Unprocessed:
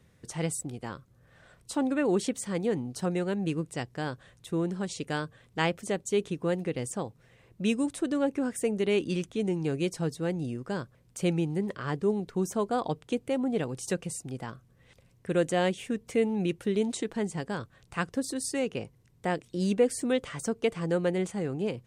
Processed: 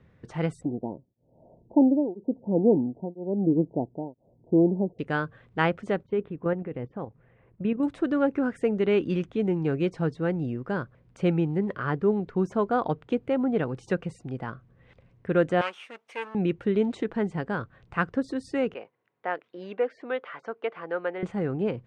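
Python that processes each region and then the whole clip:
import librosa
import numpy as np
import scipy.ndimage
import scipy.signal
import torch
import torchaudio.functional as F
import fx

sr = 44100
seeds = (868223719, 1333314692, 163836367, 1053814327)

y = fx.chain(x, sr, fx.cheby_ripple(hz=940.0, ripple_db=6),
    fx.peak_eq(hz=400.0, db=11.0, octaves=1.9),
    fx.tremolo_abs(hz=1.0), at=(0.65, 4.99))
y = fx.chain(y, sr, fx.gaussian_blur(sigma=3.1),
    fx.level_steps(step_db=9), at=(6.03, 7.83))
y = fx.chain(y, sr, fx.lower_of_two(delay_ms=0.33),
    fx.highpass(hz=1000.0, slope=12),
    fx.high_shelf(hz=7900.0, db=11.5), at=(15.61, 16.35))
y = fx.chain(y, sr, fx.highpass(hz=610.0, slope=12),
    fx.air_absorb(metres=220.0), at=(18.74, 21.23))
y = scipy.signal.sosfilt(scipy.signal.butter(2, 2200.0, 'lowpass', fs=sr, output='sos'), y)
y = fx.dynamic_eq(y, sr, hz=1400.0, q=3.9, threshold_db=-53.0, ratio=4.0, max_db=6)
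y = F.gain(torch.from_numpy(y), 3.5).numpy()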